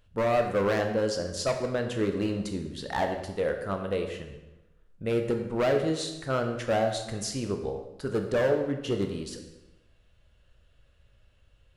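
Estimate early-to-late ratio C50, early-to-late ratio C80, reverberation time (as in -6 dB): 7.0 dB, 9.0 dB, 1.0 s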